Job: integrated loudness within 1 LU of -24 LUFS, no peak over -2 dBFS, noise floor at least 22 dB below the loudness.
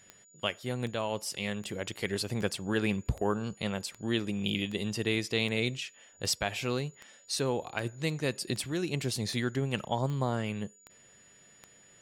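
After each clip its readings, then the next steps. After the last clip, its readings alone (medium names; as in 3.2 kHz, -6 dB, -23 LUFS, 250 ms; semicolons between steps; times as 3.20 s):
clicks found 16; steady tone 6.9 kHz; tone level -58 dBFS; loudness -32.5 LUFS; peak level -15.0 dBFS; loudness target -24.0 LUFS
-> de-click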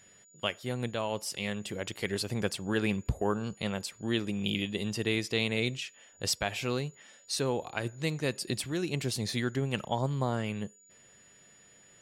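clicks found 0; steady tone 6.9 kHz; tone level -58 dBFS
-> band-stop 6.9 kHz, Q 30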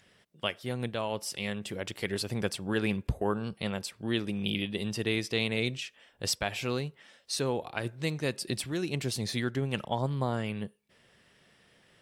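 steady tone not found; loudness -32.5 LUFS; peak level -15.0 dBFS; loudness target -24.0 LUFS
-> trim +8.5 dB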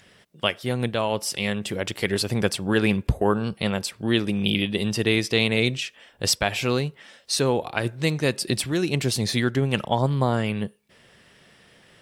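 loudness -24.0 LUFS; peak level -6.5 dBFS; noise floor -57 dBFS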